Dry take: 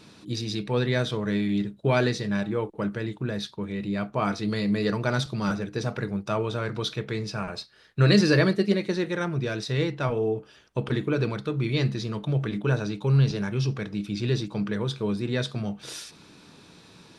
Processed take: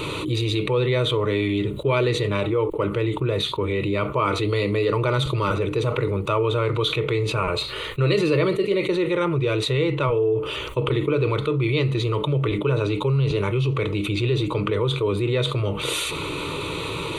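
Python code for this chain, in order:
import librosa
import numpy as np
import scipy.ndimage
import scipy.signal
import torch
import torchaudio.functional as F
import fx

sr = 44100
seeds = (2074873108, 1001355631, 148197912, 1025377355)

y = fx.high_shelf(x, sr, hz=4800.0, db=-4.5)
y = fx.fixed_phaser(y, sr, hz=1100.0, stages=8)
y = fx.env_flatten(y, sr, amount_pct=70)
y = y * 10.0 ** (2.0 / 20.0)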